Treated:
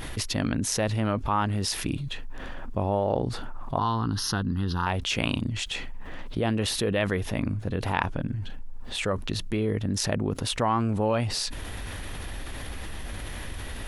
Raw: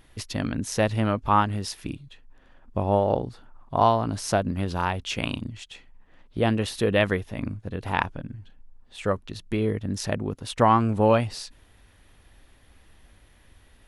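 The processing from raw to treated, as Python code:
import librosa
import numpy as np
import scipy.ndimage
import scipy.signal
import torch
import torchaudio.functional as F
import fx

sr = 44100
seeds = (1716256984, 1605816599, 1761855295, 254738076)

y = fx.fixed_phaser(x, sr, hz=2300.0, stages=6, at=(3.78, 4.87))
y = fx.env_flatten(y, sr, amount_pct=70)
y = y * librosa.db_to_amplitude(-7.5)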